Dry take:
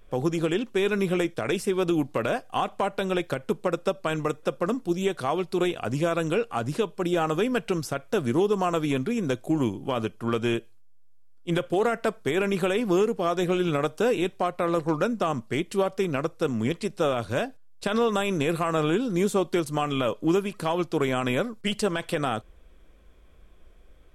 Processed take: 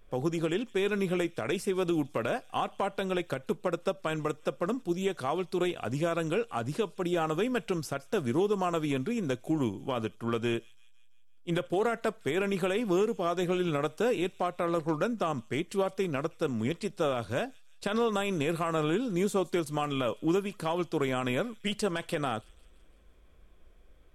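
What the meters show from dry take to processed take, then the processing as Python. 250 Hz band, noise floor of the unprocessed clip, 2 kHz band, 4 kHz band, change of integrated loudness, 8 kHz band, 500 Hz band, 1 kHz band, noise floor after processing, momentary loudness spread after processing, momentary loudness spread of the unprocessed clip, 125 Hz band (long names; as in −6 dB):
−4.5 dB, −51 dBFS, −4.5 dB, −4.5 dB, −4.5 dB, −4.5 dB, −4.5 dB, −4.5 dB, −55 dBFS, 5 LU, 5 LU, −4.5 dB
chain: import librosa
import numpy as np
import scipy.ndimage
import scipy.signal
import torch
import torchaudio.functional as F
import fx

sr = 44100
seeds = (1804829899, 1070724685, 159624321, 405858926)

y = fx.echo_wet_highpass(x, sr, ms=167, feedback_pct=56, hz=3900.0, wet_db=-17.0)
y = y * librosa.db_to_amplitude(-4.5)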